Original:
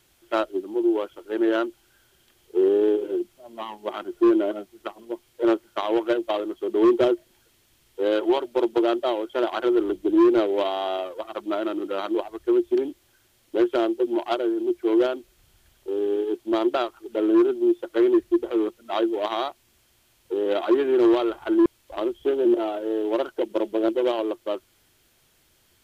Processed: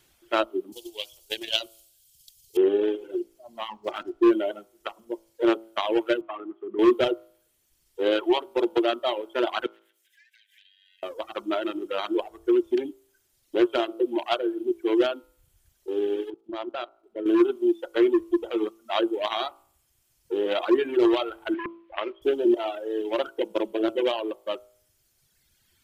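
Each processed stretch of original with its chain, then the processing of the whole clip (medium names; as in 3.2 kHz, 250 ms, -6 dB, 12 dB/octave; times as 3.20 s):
0.72–2.57 s: FFT filter 130 Hz 0 dB, 270 Hz -25 dB, 680 Hz -10 dB, 1.3 kHz -21 dB, 2.8 kHz +3 dB, 4.3 kHz +11 dB + transient shaper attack +12 dB, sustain +4 dB
3.68–4.22 s: block-companded coder 5-bit + low-pass 3.2 kHz 6 dB/octave + loudspeaker Doppler distortion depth 0.15 ms
6.21–6.79 s: cabinet simulation 160–2600 Hz, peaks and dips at 300 Hz +4 dB, 540 Hz -10 dB, 1.2 kHz +6 dB + compression 3:1, threshold -29 dBFS
9.66–11.03 s: partial rectifier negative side -3 dB + brick-wall FIR high-pass 1.5 kHz + compression 8:1, threshold -52 dBFS
16.30–17.26 s: low-pass 3.2 kHz 6 dB/octave + feedback comb 130 Hz, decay 1.8 s, mix 40% + level held to a coarse grid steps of 15 dB
21.54–22.22 s: block-companded coder 5-bit + low-pass 2.5 kHz 24 dB/octave + tilt shelf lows -9.5 dB, about 850 Hz
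whole clip: dynamic bell 2.7 kHz, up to +6 dB, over -46 dBFS, Q 1.1; de-hum 56.07 Hz, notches 26; reverb removal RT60 1.8 s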